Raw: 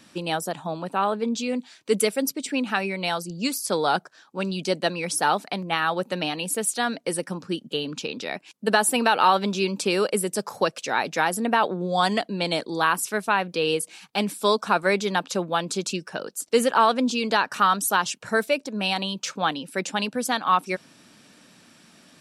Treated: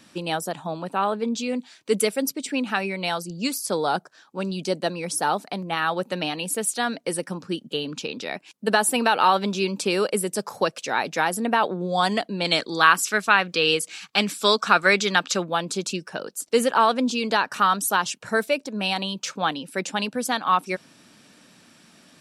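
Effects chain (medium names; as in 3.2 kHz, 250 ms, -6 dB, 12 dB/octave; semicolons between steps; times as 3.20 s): 3.62–5.77 s: dynamic bell 2.4 kHz, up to -5 dB, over -37 dBFS, Q 0.73; 12.45–15.43 s: time-frequency box 1.1–8.1 kHz +7 dB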